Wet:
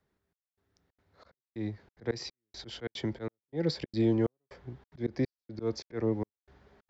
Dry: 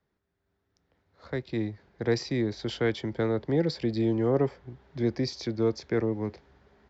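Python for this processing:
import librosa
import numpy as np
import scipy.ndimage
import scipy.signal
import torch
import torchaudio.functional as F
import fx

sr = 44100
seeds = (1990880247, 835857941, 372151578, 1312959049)

y = fx.auto_swell(x, sr, attack_ms=157.0)
y = fx.step_gate(y, sr, bpm=183, pattern='xxxx...xxxx.', floor_db=-60.0, edge_ms=4.5)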